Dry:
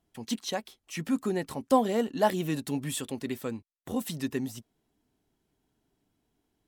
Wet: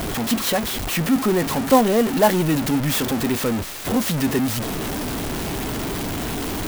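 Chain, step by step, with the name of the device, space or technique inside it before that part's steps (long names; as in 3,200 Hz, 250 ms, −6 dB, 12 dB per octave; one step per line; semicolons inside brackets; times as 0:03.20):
early CD player with a faulty converter (converter with a step at zero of −26 dBFS; converter with an unsteady clock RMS 0.039 ms)
level +6.5 dB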